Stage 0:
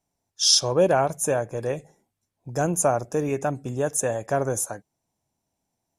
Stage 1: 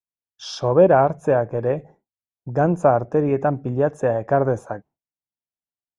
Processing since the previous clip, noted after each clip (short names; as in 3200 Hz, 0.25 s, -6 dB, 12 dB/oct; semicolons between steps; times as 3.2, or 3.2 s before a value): expander -47 dBFS; LPF 1500 Hz 12 dB/oct; gain +6 dB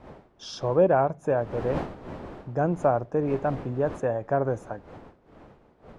wind noise 590 Hz -35 dBFS; gain -6.5 dB